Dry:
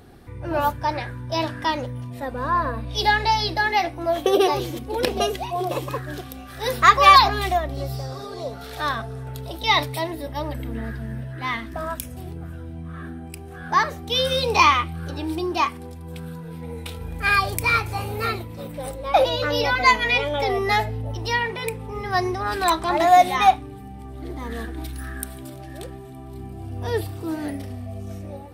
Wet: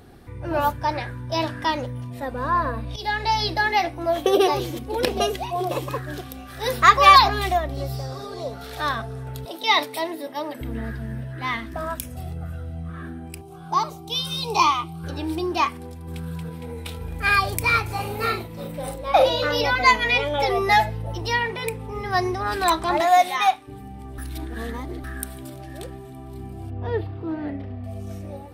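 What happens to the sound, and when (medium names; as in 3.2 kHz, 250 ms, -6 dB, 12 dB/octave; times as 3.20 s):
2.96–3.42 s: fade in, from -13 dB
9.45–10.61 s: high-pass 230 Hz 24 dB/octave
12.15–12.90 s: comb 1.5 ms, depth 63%
13.41–15.04 s: static phaser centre 350 Hz, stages 8
15.84–16.26 s: echo throw 230 ms, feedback 60%, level -3 dB
17.86–19.61 s: doubling 42 ms -6 dB
20.38–21.21 s: comb 5.9 ms, depth 81%
23.00–23.67 s: high-pass 540 Hz -> 1.2 kHz 6 dB/octave
24.18–25.04 s: reverse
26.70–27.84 s: distance through air 390 m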